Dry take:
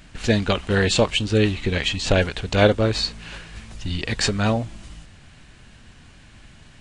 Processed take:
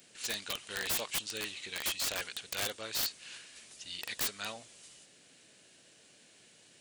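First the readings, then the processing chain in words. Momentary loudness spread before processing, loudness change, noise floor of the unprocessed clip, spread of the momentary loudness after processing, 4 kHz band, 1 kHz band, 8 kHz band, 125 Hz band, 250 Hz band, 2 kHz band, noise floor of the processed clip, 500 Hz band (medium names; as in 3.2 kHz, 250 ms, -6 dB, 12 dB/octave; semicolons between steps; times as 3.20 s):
17 LU, -14.0 dB, -48 dBFS, 16 LU, -11.0 dB, -16.5 dB, -5.0 dB, -33.0 dB, -28.5 dB, -13.5 dB, -61 dBFS, -24.0 dB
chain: differentiator; band noise 110–650 Hz -68 dBFS; integer overflow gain 25 dB; trim -1 dB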